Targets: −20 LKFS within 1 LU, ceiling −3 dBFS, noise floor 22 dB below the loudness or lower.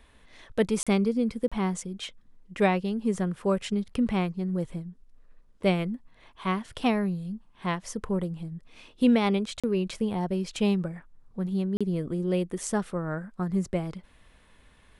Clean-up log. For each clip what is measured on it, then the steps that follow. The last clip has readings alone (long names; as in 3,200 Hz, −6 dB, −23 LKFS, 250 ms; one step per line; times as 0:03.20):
number of dropouts 4; longest dropout 36 ms; integrated loudness −28.5 LKFS; sample peak −10.5 dBFS; target loudness −20.0 LKFS
→ repair the gap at 0:00.83/0:01.48/0:09.60/0:11.77, 36 ms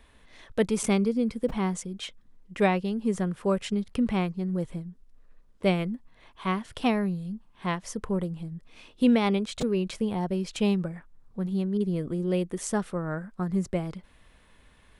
number of dropouts 0; integrated loudness −28.5 LKFS; sample peak −10.5 dBFS; target loudness −20.0 LKFS
→ level +8.5 dB
brickwall limiter −3 dBFS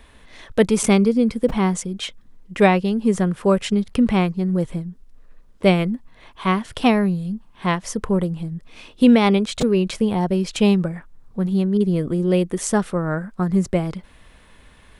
integrated loudness −20.0 LKFS; sample peak −3.0 dBFS; background noise floor −50 dBFS